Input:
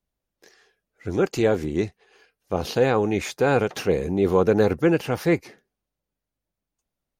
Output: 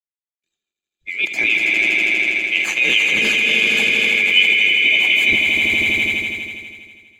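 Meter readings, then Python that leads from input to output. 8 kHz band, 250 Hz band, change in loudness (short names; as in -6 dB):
+8.5 dB, -7.0 dB, +9.0 dB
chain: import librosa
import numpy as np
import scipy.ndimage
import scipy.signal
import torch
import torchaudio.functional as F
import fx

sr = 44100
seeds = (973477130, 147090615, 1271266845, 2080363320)

p1 = fx.band_swap(x, sr, width_hz=2000)
p2 = fx.low_shelf(p1, sr, hz=260.0, db=-9.5)
p3 = fx.small_body(p2, sr, hz=(230.0, 330.0, 1700.0, 3000.0), ring_ms=35, db=12)
p4 = fx.rotary_switch(p3, sr, hz=7.0, then_hz=1.2, switch_at_s=2.87)
p5 = fx.echo_swell(p4, sr, ms=81, loudest=5, wet_db=-7.0)
p6 = fx.over_compress(p5, sr, threshold_db=-23.0, ratio=-1.0)
p7 = p5 + (p6 * librosa.db_to_amplitude(1.5))
p8 = fx.band_widen(p7, sr, depth_pct=100)
y = p8 * librosa.db_to_amplitude(-1.0)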